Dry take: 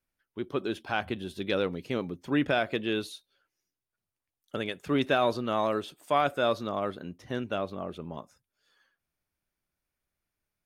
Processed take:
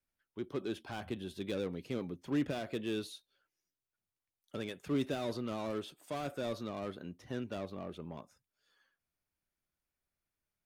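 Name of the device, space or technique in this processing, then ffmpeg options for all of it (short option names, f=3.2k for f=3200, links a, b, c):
one-band saturation: -filter_complex "[0:a]acrossover=split=440|4400[a][b][c];[b]asoftclip=type=tanh:threshold=-37dB[d];[a][d][c]amix=inputs=3:normalize=0,volume=-5dB"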